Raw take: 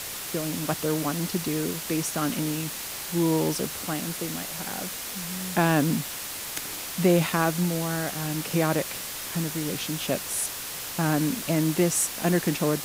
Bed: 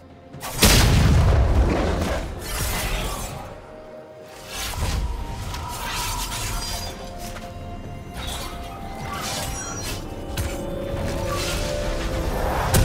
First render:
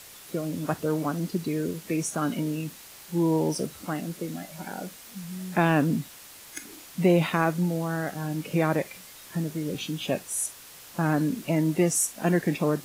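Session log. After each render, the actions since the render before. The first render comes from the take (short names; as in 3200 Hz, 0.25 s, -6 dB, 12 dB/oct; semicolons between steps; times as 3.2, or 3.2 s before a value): noise print and reduce 12 dB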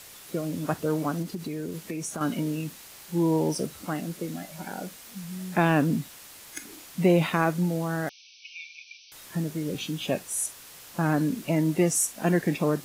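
1.22–2.21 compressor 5:1, threshold -29 dBFS; 8.09–9.12 brick-wall FIR band-pass 2200–6200 Hz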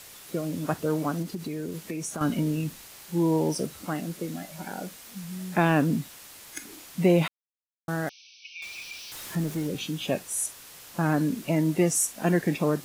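2.21–2.86 low shelf 120 Hz +10.5 dB; 7.28–7.88 mute; 8.62–9.67 zero-crossing step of -38.5 dBFS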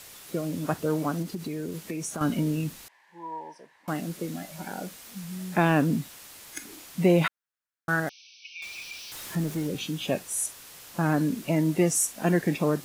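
2.88–3.88 double band-pass 1300 Hz, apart 0.85 oct; 7.24–8 bell 1500 Hz +12 dB 0.78 oct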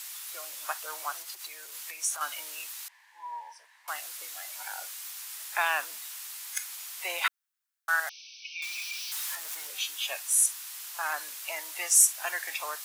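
HPF 840 Hz 24 dB/oct; tilt +2 dB/oct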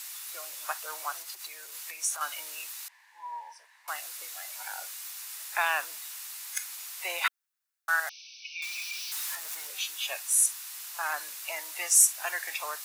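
HPF 270 Hz 12 dB/oct; notch 3200 Hz, Q 22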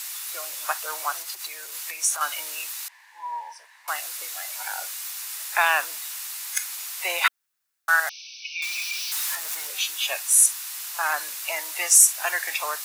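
gain +7 dB; limiter -3 dBFS, peak gain reduction 2.5 dB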